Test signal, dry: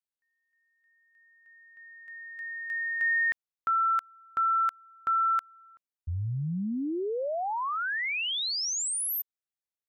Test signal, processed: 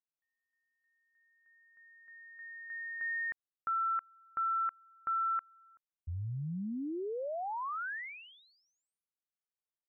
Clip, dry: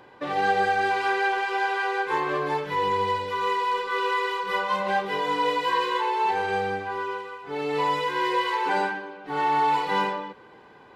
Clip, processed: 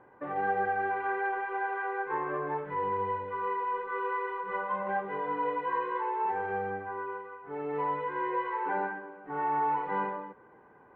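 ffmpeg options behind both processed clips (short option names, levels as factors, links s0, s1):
-af "lowpass=f=1800:w=0.5412,lowpass=f=1800:w=1.3066,volume=0.473"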